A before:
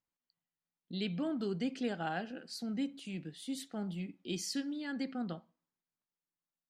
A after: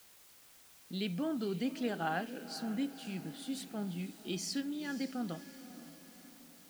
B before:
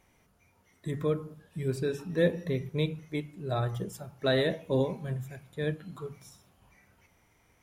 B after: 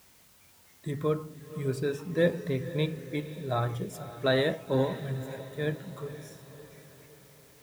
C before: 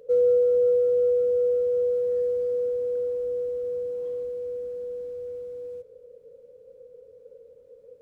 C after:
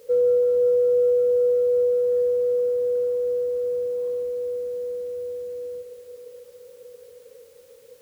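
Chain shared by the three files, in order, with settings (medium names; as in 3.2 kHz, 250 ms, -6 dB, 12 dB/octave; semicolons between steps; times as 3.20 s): high-pass 43 Hz 12 dB/octave; dynamic bell 1.1 kHz, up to +5 dB, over -44 dBFS, Q 1.4; word length cut 10-bit, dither triangular; on a send: echo that smears into a reverb 525 ms, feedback 51%, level -14 dB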